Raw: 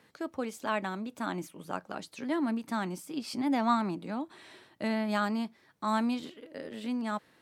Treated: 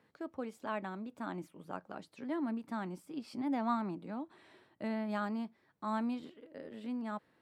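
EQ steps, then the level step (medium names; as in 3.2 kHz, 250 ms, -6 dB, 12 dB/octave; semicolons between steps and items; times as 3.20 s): treble shelf 2.6 kHz -10.5 dB; band-stop 6.3 kHz, Q 16; -5.5 dB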